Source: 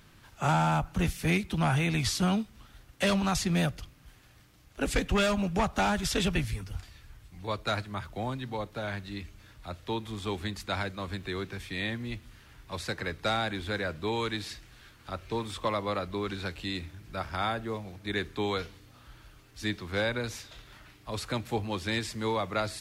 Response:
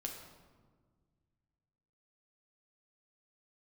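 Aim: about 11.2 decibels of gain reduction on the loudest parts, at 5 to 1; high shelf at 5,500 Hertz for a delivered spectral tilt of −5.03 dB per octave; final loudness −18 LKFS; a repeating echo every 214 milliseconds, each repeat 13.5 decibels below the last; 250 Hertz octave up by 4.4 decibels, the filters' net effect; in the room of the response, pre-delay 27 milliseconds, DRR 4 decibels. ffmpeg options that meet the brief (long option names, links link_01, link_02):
-filter_complex "[0:a]equalizer=frequency=250:width_type=o:gain=6.5,highshelf=frequency=5500:gain=-6,acompressor=threshold=-33dB:ratio=5,aecho=1:1:214|428:0.211|0.0444,asplit=2[link_01][link_02];[1:a]atrim=start_sample=2205,adelay=27[link_03];[link_02][link_03]afir=irnorm=-1:irlink=0,volume=-2.5dB[link_04];[link_01][link_04]amix=inputs=2:normalize=0,volume=18dB"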